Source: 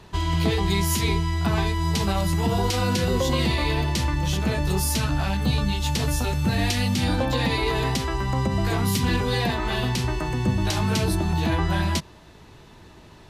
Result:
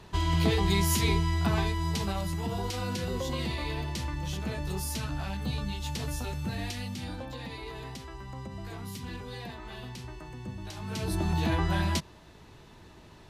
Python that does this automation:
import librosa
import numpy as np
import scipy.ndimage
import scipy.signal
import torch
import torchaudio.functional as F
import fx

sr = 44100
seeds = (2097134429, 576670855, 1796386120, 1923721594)

y = fx.gain(x, sr, db=fx.line((1.34, -3.0), (2.41, -10.0), (6.34, -10.0), (7.39, -17.0), (10.77, -17.0), (11.23, -4.5)))